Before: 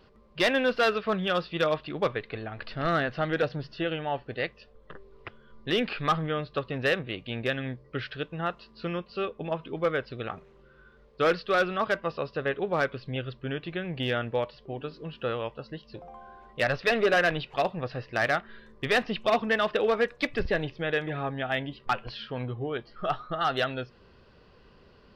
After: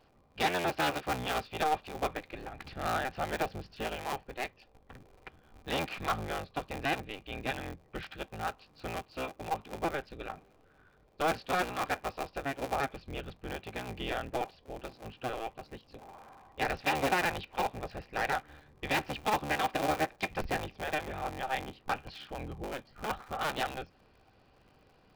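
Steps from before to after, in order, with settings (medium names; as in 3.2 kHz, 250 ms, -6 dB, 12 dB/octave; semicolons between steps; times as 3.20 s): cycle switcher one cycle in 3, inverted; small resonant body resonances 780/2400 Hz, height 10 dB; trim -7.5 dB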